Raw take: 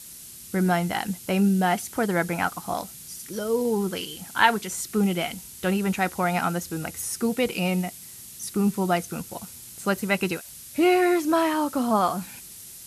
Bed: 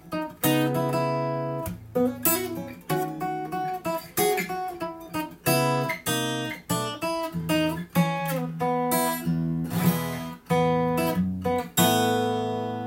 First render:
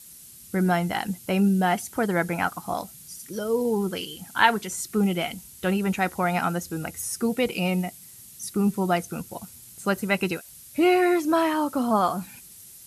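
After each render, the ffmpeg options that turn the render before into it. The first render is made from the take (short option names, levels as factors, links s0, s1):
-af "afftdn=nr=6:nf=-43"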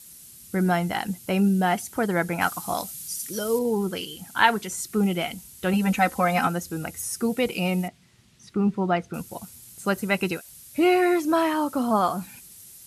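-filter_complex "[0:a]asettb=1/sr,asplit=3[s0][s1][s2];[s0]atrim=end=2.414[s3];[s1]atrim=start=2.41:end=3.59,asetpts=PTS-STARTPTS,afade=t=in:d=0.004:c=qsin,afade=t=out:st=1.176:d=0.004:c=qsin,highshelf=f=2400:g=9[s4];[s2]atrim=start=3.586[s5];[s3][s4]acrossfade=d=0.004:c1=hsin:c2=qsin[s6];[s6][s5]acrossfade=d=0.004:c1=qsin:c2=hsin,asettb=1/sr,asplit=3[s7][s8][s9];[s7]atrim=end=5.734[s10];[s8]atrim=start=5.73:end=6.47,asetpts=PTS-STARTPTS,afade=t=in:d=0.004:c=qsin,afade=t=out:st=0.736:d=0.004:c=qsin,aecho=1:1:3.9:0.95,atrim=end_sample=32634[s11];[s9]atrim=start=6.466[s12];[s10][s11]acrossfade=d=0.004:c1=hsin:c2=qsin[s13];[s13][s12]acrossfade=d=0.004:c1=qsin:c2=hsin,asettb=1/sr,asplit=3[s14][s15][s16];[s14]atrim=end=7.884[s17];[s15]atrim=start=7.88:end=9.14,asetpts=PTS-STARTPTS,afade=t=in:d=0.004:c=qsin,afade=t=out:st=1.256:d=0.004:c=qsin,lowpass=3100[s18];[s16]atrim=start=9.136[s19];[s17][s18]acrossfade=d=0.004:c1=hsin:c2=qsin[s20];[s20][s19]acrossfade=d=0.004:c1=qsin:c2=hsin"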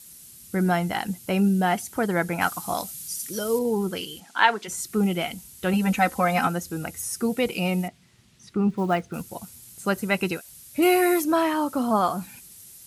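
-filter_complex "[0:a]asplit=3[s0][s1][s2];[s0]afade=t=out:st=4.19:d=0.02[s3];[s1]highpass=330,lowpass=6300,afade=t=in:st=4.19:d=0.02,afade=t=out:st=4.67:d=0.02[s4];[s2]afade=t=in:st=4.67:d=0.02[s5];[s3][s4][s5]amix=inputs=3:normalize=0,asettb=1/sr,asplit=3[s6][s7][s8];[s6]atrim=end=8.704[s9];[s7]atrim=start=8.7:end=9.24,asetpts=PTS-STARTPTS,afade=t=in:d=0.004:c=qsin,afade=t=out:st=0.536:d=0.004:c=qsin,acrusher=bits=7:mode=log:mix=0:aa=0.000001[s10];[s8]atrim=start=9.236[s11];[s9][s10]acrossfade=d=0.004:c1=hsin:c2=qsin[s12];[s12][s11]acrossfade=d=0.004:c1=qsin:c2=hsin,asettb=1/sr,asplit=3[s13][s14][s15];[s13]atrim=end=10.824[s16];[s14]atrim=start=10.82:end=11.24,asetpts=PTS-STARTPTS,afade=t=in:d=0.004:c=qsin,afade=t=out:st=0.416:d=0.004:c=qsin,equalizer=f=12000:t=o:w=1.2:g=13.5[s17];[s15]atrim=start=11.236[s18];[s16][s17]acrossfade=d=0.004:c1=hsin:c2=qsin[s19];[s19][s18]acrossfade=d=0.004:c1=qsin:c2=hsin"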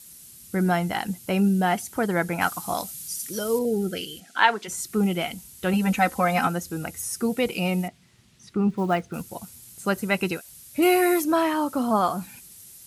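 -filter_complex "[0:a]asettb=1/sr,asplit=3[s0][s1][s2];[s0]atrim=end=3.654[s3];[s1]atrim=start=3.65:end=4.37,asetpts=PTS-STARTPTS,afade=t=in:d=0.004:c=qsin,afade=t=out:st=0.716:d=0.004:c=qsin,asuperstop=centerf=1000:order=8:qfactor=1.9[s4];[s2]atrim=start=4.366[s5];[s3][s4]acrossfade=d=0.004:c1=hsin:c2=qsin[s6];[s6][s5]acrossfade=d=0.004:c1=qsin:c2=hsin"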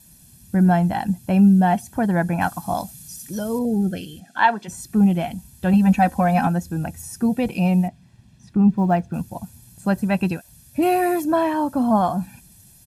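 -af "tiltshelf=f=890:g=6.5,aecho=1:1:1.2:0.63"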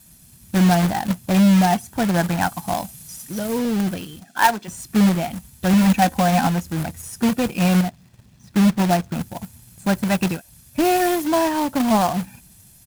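-af "acrusher=bits=2:mode=log:mix=0:aa=0.000001"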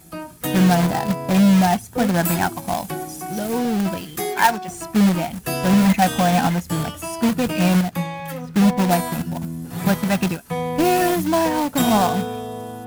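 -filter_complex "[1:a]volume=0.75[s0];[0:a][s0]amix=inputs=2:normalize=0"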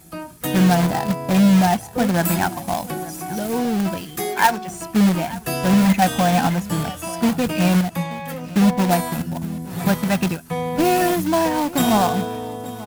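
-af "aecho=1:1:881:0.119"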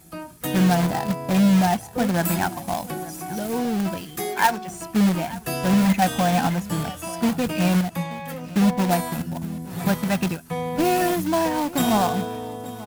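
-af "volume=0.708"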